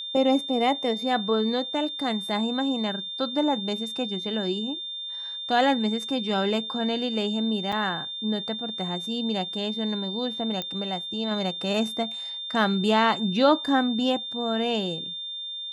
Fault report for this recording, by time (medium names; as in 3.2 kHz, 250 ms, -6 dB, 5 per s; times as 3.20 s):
whine 3.6 kHz -32 dBFS
7.72–7.73 s: dropout 5.4 ms
10.62 s: pop -16 dBFS